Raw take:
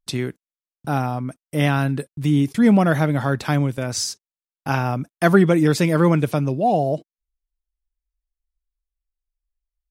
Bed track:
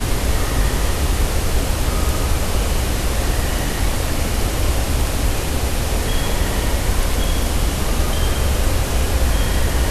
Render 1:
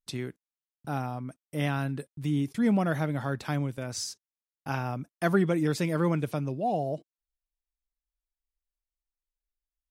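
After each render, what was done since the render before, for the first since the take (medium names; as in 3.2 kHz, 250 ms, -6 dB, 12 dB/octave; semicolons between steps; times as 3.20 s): trim -10 dB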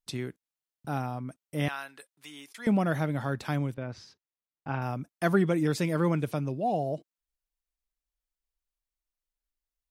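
1.68–2.67 s: high-pass 970 Hz; 3.74–4.82 s: distance through air 330 m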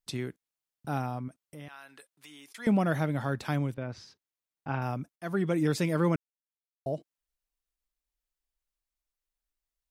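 1.28–2.52 s: compression 2.5:1, threshold -48 dBFS; 5.16–5.61 s: fade in, from -21 dB; 6.16–6.86 s: mute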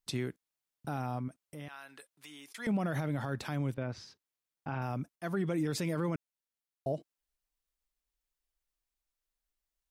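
peak limiter -24.5 dBFS, peak gain reduction 9 dB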